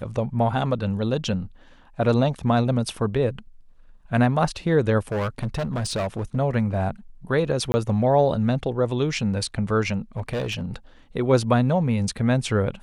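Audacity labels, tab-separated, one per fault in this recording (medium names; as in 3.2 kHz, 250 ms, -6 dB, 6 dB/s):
5.110000	6.370000	clipped -22 dBFS
7.720000	7.740000	dropout 20 ms
10.170000	10.650000	clipped -22.5 dBFS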